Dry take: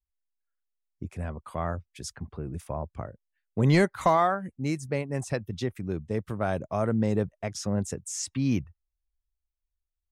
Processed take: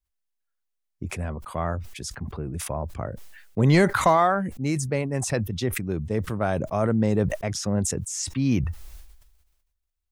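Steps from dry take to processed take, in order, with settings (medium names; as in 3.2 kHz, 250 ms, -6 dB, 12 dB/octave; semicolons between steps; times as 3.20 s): decay stretcher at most 47 dB/s; trim +3 dB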